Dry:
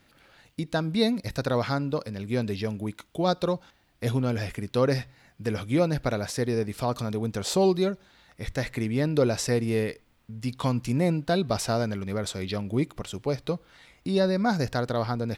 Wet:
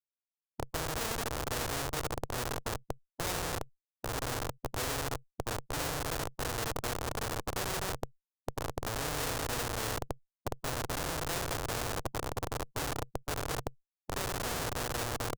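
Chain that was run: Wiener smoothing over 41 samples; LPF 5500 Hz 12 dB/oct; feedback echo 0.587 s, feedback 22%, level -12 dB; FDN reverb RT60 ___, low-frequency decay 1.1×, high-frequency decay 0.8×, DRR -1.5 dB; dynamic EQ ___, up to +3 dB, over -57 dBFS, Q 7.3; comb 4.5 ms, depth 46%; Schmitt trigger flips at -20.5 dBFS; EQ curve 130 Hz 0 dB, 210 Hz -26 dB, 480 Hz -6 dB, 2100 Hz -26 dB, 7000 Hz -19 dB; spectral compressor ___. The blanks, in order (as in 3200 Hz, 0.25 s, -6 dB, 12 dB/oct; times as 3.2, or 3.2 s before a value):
1.2 s, 2800 Hz, 4:1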